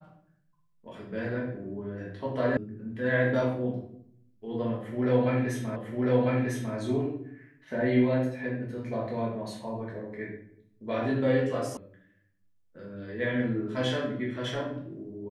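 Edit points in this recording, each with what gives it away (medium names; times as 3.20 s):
2.57 s: sound stops dead
5.76 s: repeat of the last 1 s
11.77 s: sound stops dead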